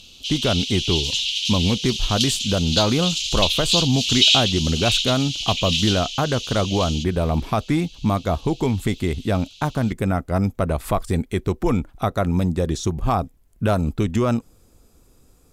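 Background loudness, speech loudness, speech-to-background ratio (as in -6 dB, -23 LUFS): -21.0 LUFS, -23.0 LUFS, -2.0 dB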